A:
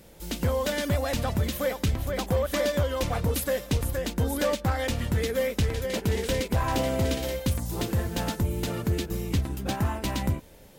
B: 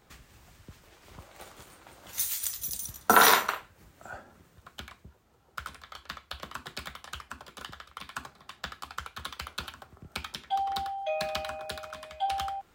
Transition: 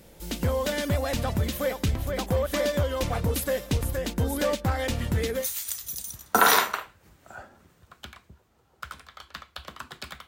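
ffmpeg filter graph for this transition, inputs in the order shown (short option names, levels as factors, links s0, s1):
-filter_complex "[0:a]apad=whole_dur=10.27,atrim=end=10.27,atrim=end=5.47,asetpts=PTS-STARTPTS[s0];[1:a]atrim=start=2.1:end=7.02,asetpts=PTS-STARTPTS[s1];[s0][s1]acrossfade=d=0.12:c1=tri:c2=tri"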